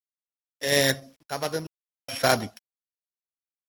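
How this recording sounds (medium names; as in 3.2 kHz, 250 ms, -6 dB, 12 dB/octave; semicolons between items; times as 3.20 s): a buzz of ramps at a fixed pitch in blocks of 8 samples; random-step tremolo 2.4 Hz, depth 100%; a quantiser's noise floor 12-bit, dither none; AAC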